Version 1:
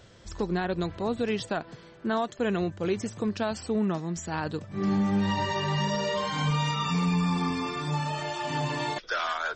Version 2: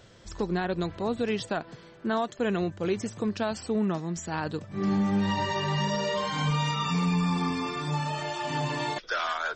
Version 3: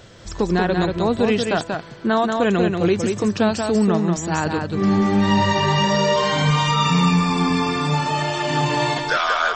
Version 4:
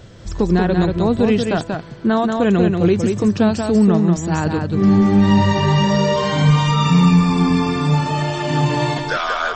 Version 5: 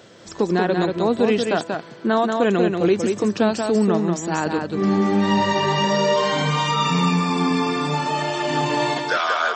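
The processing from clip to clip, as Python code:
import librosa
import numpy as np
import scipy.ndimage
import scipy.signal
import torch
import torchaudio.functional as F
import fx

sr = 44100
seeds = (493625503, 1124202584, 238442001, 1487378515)

y1 = fx.peak_eq(x, sr, hz=67.0, db=-5.5, octaves=0.62)
y2 = y1 + 10.0 ** (-4.5 / 20.0) * np.pad(y1, (int(185 * sr / 1000.0), 0))[:len(y1)]
y2 = y2 * 10.0 ** (9.0 / 20.0)
y3 = fx.low_shelf(y2, sr, hz=350.0, db=9.5)
y3 = y3 * 10.0 ** (-2.0 / 20.0)
y4 = scipy.signal.sosfilt(scipy.signal.butter(2, 280.0, 'highpass', fs=sr, output='sos'), y3)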